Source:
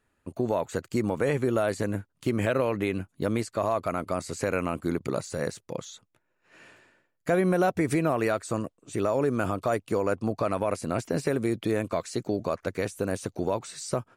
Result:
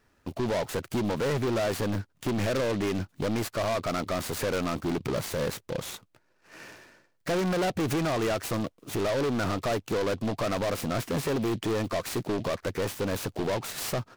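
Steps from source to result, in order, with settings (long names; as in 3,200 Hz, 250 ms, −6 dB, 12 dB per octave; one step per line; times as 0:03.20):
soft clipping −31 dBFS, distortion −6 dB
short delay modulated by noise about 3,000 Hz, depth 0.039 ms
level +6.5 dB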